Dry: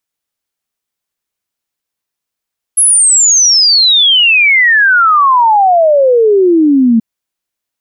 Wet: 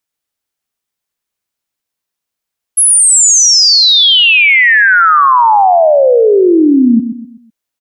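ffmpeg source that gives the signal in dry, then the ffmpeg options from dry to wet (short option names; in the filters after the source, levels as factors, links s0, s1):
-f lavfi -i "aevalsrc='0.596*clip(min(t,4.23-t)/0.01,0,1)*sin(2*PI*11000*4.23/log(220/11000)*(exp(log(220/11000)*t/4.23)-1))':d=4.23:s=44100"
-af "aecho=1:1:126|252|378|504:0.316|0.12|0.0457|0.0174"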